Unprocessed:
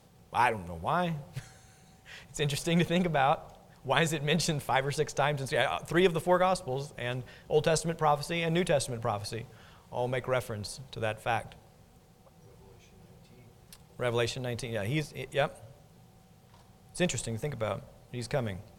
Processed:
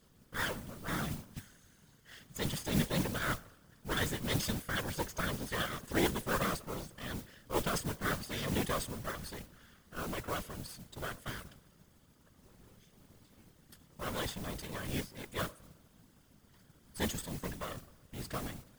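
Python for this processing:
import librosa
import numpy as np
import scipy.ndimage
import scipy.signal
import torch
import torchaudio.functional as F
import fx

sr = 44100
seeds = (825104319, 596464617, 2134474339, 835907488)

y = fx.lower_of_two(x, sr, delay_ms=0.61)
y = fx.mod_noise(y, sr, seeds[0], snr_db=11)
y = fx.whisperise(y, sr, seeds[1])
y = y * librosa.db_to_amplitude(-5.0)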